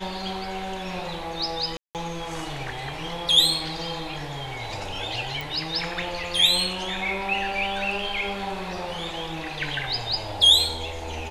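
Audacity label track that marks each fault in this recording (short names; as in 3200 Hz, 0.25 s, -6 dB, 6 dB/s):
1.770000	1.950000	gap 0.178 s
5.410000	5.410000	pop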